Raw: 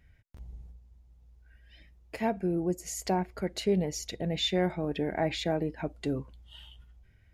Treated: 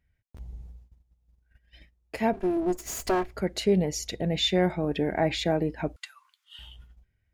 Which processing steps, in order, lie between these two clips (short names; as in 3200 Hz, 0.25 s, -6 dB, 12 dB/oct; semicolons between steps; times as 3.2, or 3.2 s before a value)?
2.33–3.37 minimum comb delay 3 ms; gate -54 dBFS, range -16 dB; 5.96–6.59 steep high-pass 1100 Hz 48 dB/oct; gain +4 dB